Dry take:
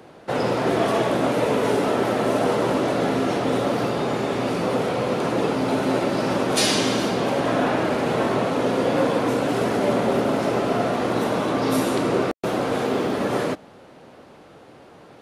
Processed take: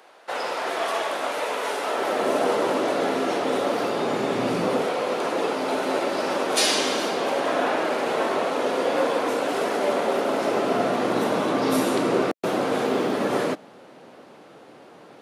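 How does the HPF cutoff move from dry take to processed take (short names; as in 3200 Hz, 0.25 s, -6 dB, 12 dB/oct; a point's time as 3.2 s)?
1.83 s 750 Hz
2.27 s 320 Hz
3.85 s 320 Hz
4.56 s 110 Hz
4.94 s 390 Hz
10.2 s 390 Hz
10.93 s 180 Hz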